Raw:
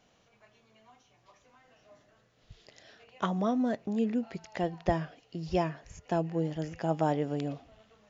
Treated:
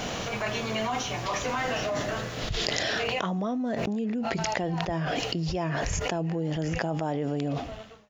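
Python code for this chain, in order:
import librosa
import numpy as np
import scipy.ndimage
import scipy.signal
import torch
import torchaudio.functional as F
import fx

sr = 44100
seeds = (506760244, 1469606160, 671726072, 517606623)

y = fx.fade_out_tail(x, sr, length_s=2.18)
y = fx.env_flatten(y, sr, amount_pct=100)
y = F.gain(torch.from_numpy(y), -6.0).numpy()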